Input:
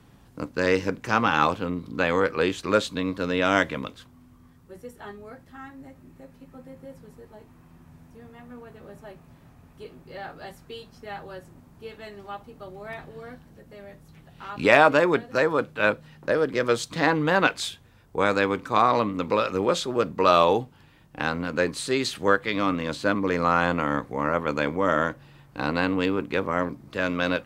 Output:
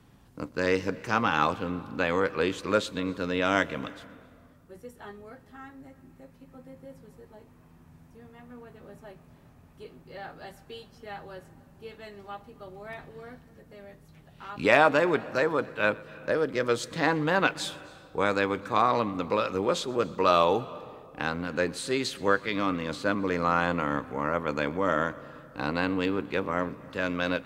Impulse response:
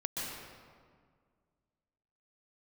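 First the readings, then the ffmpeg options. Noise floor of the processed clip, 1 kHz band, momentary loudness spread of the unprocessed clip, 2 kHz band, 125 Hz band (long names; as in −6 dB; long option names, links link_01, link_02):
−56 dBFS, −3.5 dB, 20 LU, −3.5 dB, −3.5 dB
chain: -filter_complex "[0:a]asplit=2[link_01][link_02];[1:a]atrim=start_sample=2205,adelay=123[link_03];[link_02][link_03]afir=irnorm=-1:irlink=0,volume=-22dB[link_04];[link_01][link_04]amix=inputs=2:normalize=0,volume=-3.5dB"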